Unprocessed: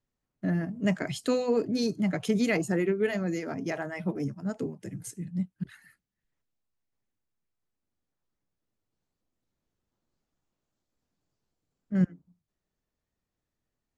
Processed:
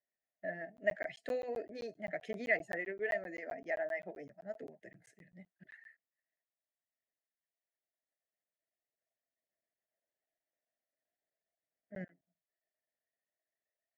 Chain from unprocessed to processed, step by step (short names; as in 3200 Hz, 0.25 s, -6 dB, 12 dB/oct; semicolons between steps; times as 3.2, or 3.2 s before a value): double band-pass 1100 Hz, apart 1.5 oct; phaser 0.42 Hz, delay 4.3 ms, feedback 26%; crackling interface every 0.13 s, samples 512, zero, from 0.77; gain +1.5 dB